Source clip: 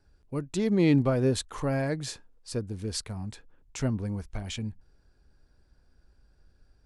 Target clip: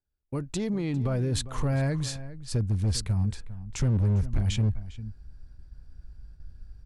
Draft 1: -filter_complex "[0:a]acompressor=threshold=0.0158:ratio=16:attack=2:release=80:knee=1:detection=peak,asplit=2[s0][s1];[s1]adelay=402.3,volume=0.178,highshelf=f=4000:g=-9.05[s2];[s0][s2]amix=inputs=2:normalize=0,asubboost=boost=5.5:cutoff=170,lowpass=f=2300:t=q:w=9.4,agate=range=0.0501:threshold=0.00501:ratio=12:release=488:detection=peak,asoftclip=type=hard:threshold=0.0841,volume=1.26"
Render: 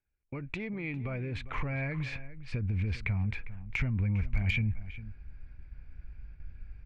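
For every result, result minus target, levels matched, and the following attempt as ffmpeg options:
2 kHz band +12.5 dB; compression: peak gain reduction +9 dB
-filter_complex "[0:a]acompressor=threshold=0.0158:ratio=16:attack=2:release=80:knee=1:detection=peak,asplit=2[s0][s1];[s1]adelay=402.3,volume=0.178,highshelf=f=4000:g=-9.05[s2];[s0][s2]amix=inputs=2:normalize=0,asubboost=boost=5.5:cutoff=170,agate=range=0.0501:threshold=0.00501:ratio=12:release=488:detection=peak,asoftclip=type=hard:threshold=0.0841,volume=1.26"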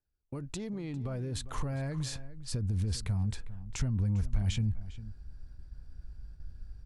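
compression: peak gain reduction +9 dB
-filter_complex "[0:a]acompressor=threshold=0.0473:ratio=16:attack=2:release=80:knee=1:detection=peak,asplit=2[s0][s1];[s1]adelay=402.3,volume=0.178,highshelf=f=4000:g=-9.05[s2];[s0][s2]amix=inputs=2:normalize=0,asubboost=boost=5.5:cutoff=170,agate=range=0.0501:threshold=0.00501:ratio=12:release=488:detection=peak,asoftclip=type=hard:threshold=0.0841,volume=1.26"

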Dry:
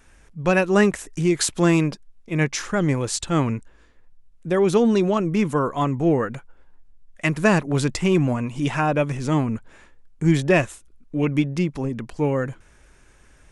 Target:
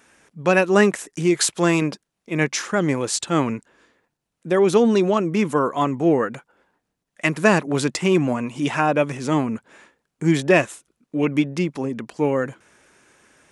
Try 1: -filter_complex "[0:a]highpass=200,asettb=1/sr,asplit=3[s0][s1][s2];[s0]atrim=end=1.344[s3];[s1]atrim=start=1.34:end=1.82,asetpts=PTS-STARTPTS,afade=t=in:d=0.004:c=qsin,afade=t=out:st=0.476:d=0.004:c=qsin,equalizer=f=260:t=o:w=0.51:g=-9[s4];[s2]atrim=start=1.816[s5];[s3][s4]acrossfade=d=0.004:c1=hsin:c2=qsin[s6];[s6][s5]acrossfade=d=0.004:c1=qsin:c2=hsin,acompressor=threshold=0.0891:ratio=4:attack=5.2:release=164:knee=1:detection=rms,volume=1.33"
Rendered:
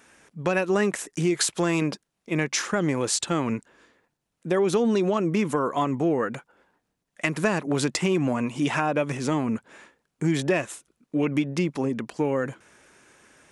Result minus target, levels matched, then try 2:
compression: peak gain reduction +9.5 dB
-filter_complex "[0:a]highpass=200,asettb=1/sr,asplit=3[s0][s1][s2];[s0]atrim=end=1.344[s3];[s1]atrim=start=1.34:end=1.82,asetpts=PTS-STARTPTS,afade=t=in:d=0.004:c=qsin,afade=t=out:st=0.476:d=0.004:c=qsin,equalizer=f=260:t=o:w=0.51:g=-9[s4];[s2]atrim=start=1.816[s5];[s3][s4]acrossfade=d=0.004:c1=hsin:c2=qsin[s6];[s6][s5]acrossfade=d=0.004:c1=qsin:c2=hsin,volume=1.33"

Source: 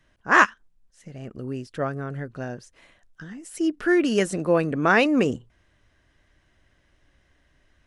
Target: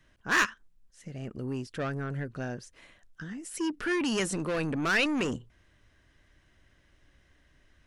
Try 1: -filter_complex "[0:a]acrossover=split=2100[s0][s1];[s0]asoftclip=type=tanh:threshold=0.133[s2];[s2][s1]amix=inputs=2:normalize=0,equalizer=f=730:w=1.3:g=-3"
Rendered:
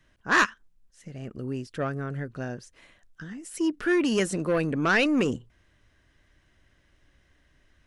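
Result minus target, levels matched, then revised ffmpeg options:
saturation: distortion -6 dB
-filter_complex "[0:a]acrossover=split=2100[s0][s1];[s0]asoftclip=type=tanh:threshold=0.0473[s2];[s2][s1]amix=inputs=2:normalize=0,equalizer=f=730:w=1.3:g=-3"

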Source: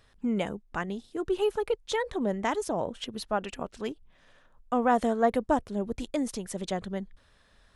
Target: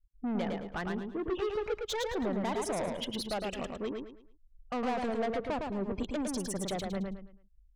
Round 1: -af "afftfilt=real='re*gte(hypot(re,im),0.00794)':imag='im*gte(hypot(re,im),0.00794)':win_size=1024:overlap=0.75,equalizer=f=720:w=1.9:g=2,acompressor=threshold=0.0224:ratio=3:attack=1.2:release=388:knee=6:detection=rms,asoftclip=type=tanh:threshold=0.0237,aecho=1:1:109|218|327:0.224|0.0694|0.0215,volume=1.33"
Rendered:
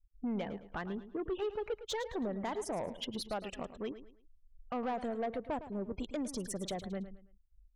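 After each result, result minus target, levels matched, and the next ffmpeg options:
compression: peak gain reduction +6.5 dB; echo-to-direct -9 dB
-af "afftfilt=real='re*gte(hypot(re,im),0.00794)':imag='im*gte(hypot(re,im),0.00794)':win_size=1024:overlap=0.75,equalizer=f=720:w=1.9:g=2,acompressor=threshold=0.0708:ratio=3:attack=1.2:release=388:knee=6:detection=rms,asoftclip=type=tanh:threshold=0.0237,aecho=1:1:109|218|327:0.224|0.0694|0.0215,volume=1.33"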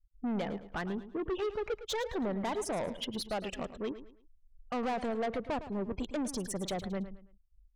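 echo-to-direct -9 dB
-af "afftfilt=real='re*gte(hypot(re,im),0.00794)':imag='im*gte(hypot(re,im),0.00794)':win_size=1024:overlap=0.75,equalizer=f=720:w=1.9:g=2,acompressor=threshold=0.0708:ratio=3:attack=1.2:release=388:knee=6:detection=rms,asoftclip=type=tanh:threshold=0.0237,aecho=1:1:109|218|327|436:0.631|0.196|0.0606|0.0188,volume=1.33"

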